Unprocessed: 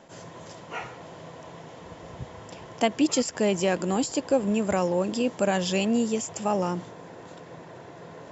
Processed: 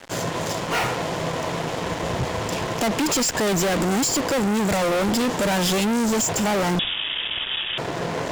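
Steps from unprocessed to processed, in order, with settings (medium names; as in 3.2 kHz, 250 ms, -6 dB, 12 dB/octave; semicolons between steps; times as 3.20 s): fuzz box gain 42 dB, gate -48 dBFS; 6.79–7.78 s: frequency inversion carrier 3.6 kHz; trim -6.5 dB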